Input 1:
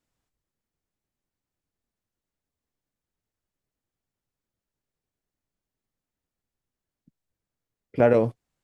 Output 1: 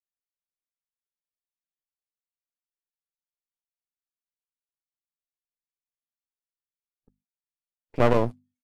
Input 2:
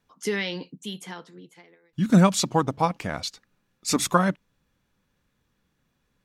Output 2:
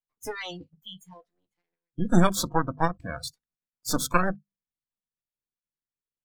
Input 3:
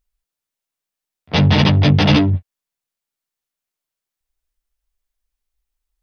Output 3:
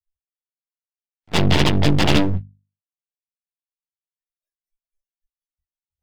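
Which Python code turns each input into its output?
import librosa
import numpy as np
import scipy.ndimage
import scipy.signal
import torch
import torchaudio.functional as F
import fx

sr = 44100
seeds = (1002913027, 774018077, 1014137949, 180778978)

y = np.maximum(x, 0.0)
y = fx.hum_notches(y, sr, base_hz=50, count=5)
y = fx.noise_reduce_blind(y, sr, reduce_db=29)
y = F.gain(torch.from_numpy(y), 1.5).numpy()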